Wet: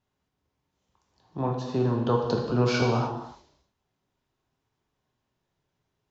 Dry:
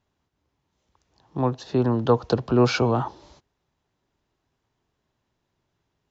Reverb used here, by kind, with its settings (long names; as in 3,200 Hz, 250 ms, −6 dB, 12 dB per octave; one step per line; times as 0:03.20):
reverb whose tail is shaped and stops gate 350 ms falling, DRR 0 dB
level −6 dB